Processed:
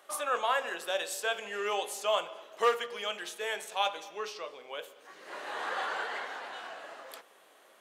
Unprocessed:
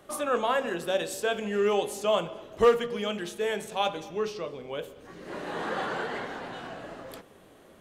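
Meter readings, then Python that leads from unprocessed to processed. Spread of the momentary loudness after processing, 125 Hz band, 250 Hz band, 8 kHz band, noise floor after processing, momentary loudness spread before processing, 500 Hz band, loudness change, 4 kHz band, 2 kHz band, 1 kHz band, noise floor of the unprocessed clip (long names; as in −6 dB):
16 LU, below −20 dB, −17.0 dB, 0.0 dB, −60 dBFS, 16 LU, −7.5 dB, −4.5 dB, 0.0 dB, 0.0 dB, −1.5 dB, −55 dBFS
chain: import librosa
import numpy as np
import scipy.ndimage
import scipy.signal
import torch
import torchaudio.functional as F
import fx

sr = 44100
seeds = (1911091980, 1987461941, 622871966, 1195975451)

y = scipy.signal.sosfilt(scipy.signal.butter(2, 740.0, 'highpass', fs=sr, output='sos'), x)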